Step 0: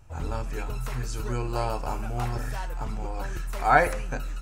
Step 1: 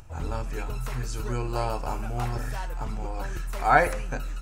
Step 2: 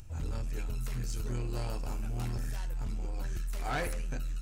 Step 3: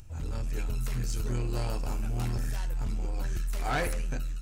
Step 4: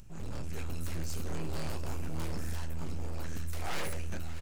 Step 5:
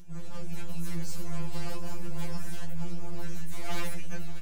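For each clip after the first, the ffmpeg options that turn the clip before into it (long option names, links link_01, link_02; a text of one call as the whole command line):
ffmpeg -i in.wav -af "acompressor=mode=upward:threshold=-42dB:ratio=2.5" out.wav
ffmpeg -i in.wav -af "equalizer=frequency=930:width_type=o:width=2.2:gain=-12,asoftclip=type=tanh:threshold=-28.5dB" out.wav
ffmpeg -i in.wav -af "dynaudnorm=framelen=150:gausssize=5:maxgain=4dB" out.wav
ffmpeg -i in.wav -af "aeval=exprs='abs(val(0))':channel_layout=same,aecho=1:1:589:0.178,volume=-2dB" out.wav
ffmpeg -i in.wav -af "afftfilt=real='re*2.83*eq(mod(b,8),0)':imag='im*2.83*eq(mod(b,8),0)':win_size=2048:overlap=0.75,volume=3dB" out.wav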